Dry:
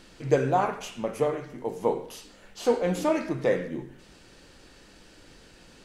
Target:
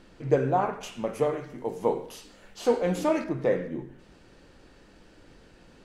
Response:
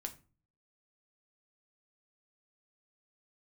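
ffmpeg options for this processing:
-af "asetnsamples=n=441:p=0,asendcmd='0.83 highshelf g -2;3.24 highshelf g -10.5',highshelf=f=2.5k:g=-11.5"

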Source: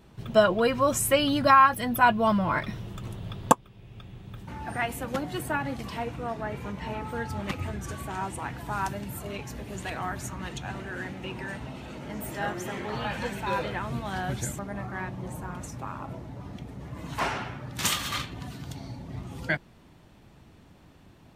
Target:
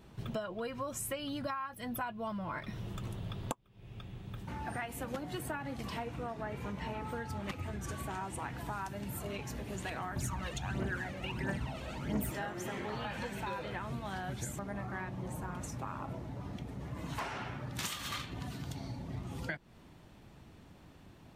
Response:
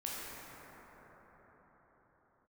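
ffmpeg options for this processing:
-filter_complex "[0:a]acompressor=threshold=-33dB:ratio=16,asettb=1/sr,asplit=3[a][b][c];[a]atrim=end=10.164[d];[b]atrim=start=10.16:end=12.32,asetpts=PTS-STARTPTS,afade=t=in:d=0.004:c=qsin,afade=t=out:st=2.156:d=0.004:c=qsin,aphaser=in_gain=1:out_gain=1:delay=1.9:decay=0.61:speed=1.5:type=triangular[e];[c]atrim=start=12.316[f];[d][e]acrossfade=d=0.004:c1=hsin:c2=qsin[g];[g][f]acrossfade=d=0.004:c1=qsin:c2=hsin,volume=-2dB"

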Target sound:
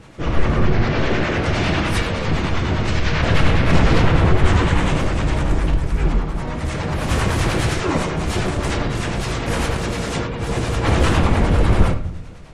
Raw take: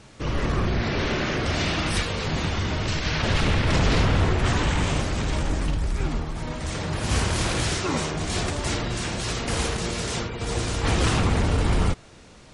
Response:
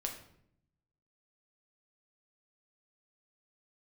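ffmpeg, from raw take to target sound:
-filter_complex "[0:a]acrossover=split=590[a][b];[a]aeval=exprs='val(0)*(1-0.5/2+0.5/2*cos(2*PI*9.9*n/s))':c=same[c];[b]aeval=exprs='val(0)*(1-0.5/2-0.5/2*cos(2*PI*9.9*n/s))':c=same[d];[c][d]amix=inputs=2:normalize=0,asplit=2[e][f];[f]asetrate=52444,aresample=44100,atempo=0.840896,volume=-7dB[g];[e][g]amix=inputs=2:normalize=0,asplit=2[h][i];[1:a]atrim=start_sample=2205,lowpass=3.1k[j];[i][j]afir=irnorm=-1:irlink=0,volume=1.5dB[k];[h][k]amix=inputs=2:normalize=0,volume=1dB"

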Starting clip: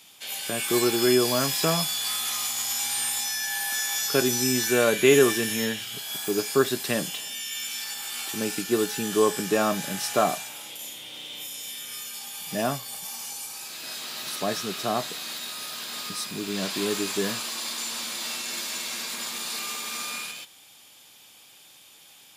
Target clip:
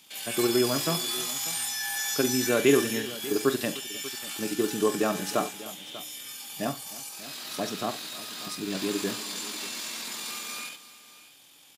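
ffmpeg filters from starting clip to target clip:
-af "equalizer=f=290:t=o:w=0.3:g=6.5,atempo=1.9,aecho=1:1:42|73|306|591:0.224|0.119|0.106|0.141,volume=-3dB"

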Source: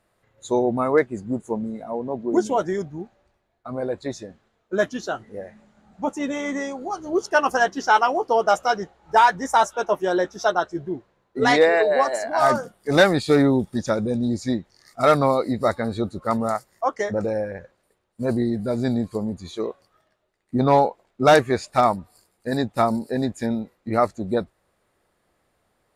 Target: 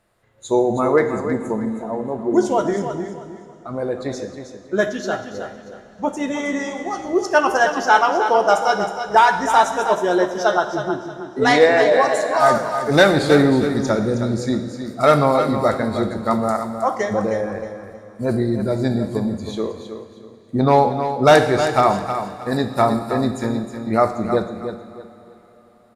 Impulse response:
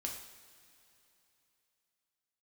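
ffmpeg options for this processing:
-filter_complex "[0:a]aecho=1:1:316|632|948:0.355|0.0958|0.0259,asplit=2[a][b];[1:a]atrim=start_sample=2205,asetrate=29547,aresample=44100[c];[b][c]afir=irnorm=-1:irlink=0,volume=-3.5dB[d];[a][d]amix=inputs=2:normalize=0,volume=-1.5dB"

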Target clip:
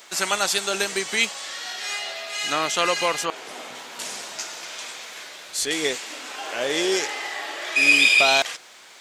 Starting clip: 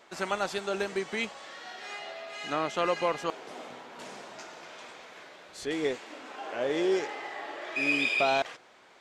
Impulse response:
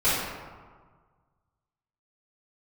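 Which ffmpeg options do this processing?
-filter_complex "[0:a]asettb=1/sr,asplit=3[a][b][c];[a]atrim=end=3.254[d];[b]atrim=start=3.25:end=3.75,asetpts=PTS-STARTPTS,afade=t=in:d=0.004:c=qsin,afade=t=out:st=0.496:d=0.004:c=qsin,acrossover=split=3000[e][f];[f]acompressor=threshold=-59dB:ratio=4:attack=1:release=60[g];[e][g]amix=inputs=2:normalize=0[h];[c]atrim=start=3.746[i];[d][h]acrossfade=d=0.004:c1=hsin:c2=qsin[j];[j][i]acrossfade=d=0.004:c1=qsin:c2=hsin,crystalizer=i=8.5:c=0,volume=1.5dB"

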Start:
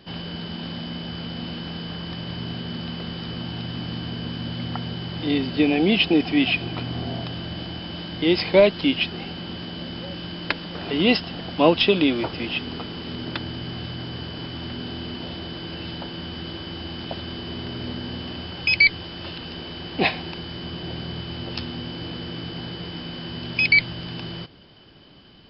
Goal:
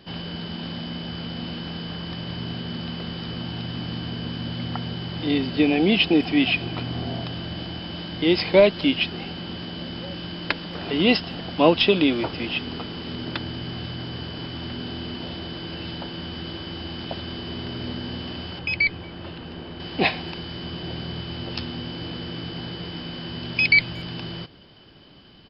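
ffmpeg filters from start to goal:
-filter_complex "[0:a]asettb=1/sr,asplit=3[a][b][c];[a]atrim=end=18.594[d];[b]atrim=start=18.59:end=19.8,asetpts=PTS-STARTPTS,afade=t=in:d=0.004:c=qsin,afade=t=out:st=1.206:d=0.004:c=qsin,lowpass=f=1.5k:p=1[e];[c]atrim=start=19.796[f];[d][e]acrossfade=d=0.004:c1=hsin:c2=qsin[g];[g][f]acrossfade=d=0.004:c1=qsin:c2=hsin,asplit=2[h][i];[i]adelay=230,highpass=300,lowpass=3.4k,asoftclip=type=hard:threshold=-13dB,volume=-29dB[j];[h][j]amix=inputs=2:normalize=0"

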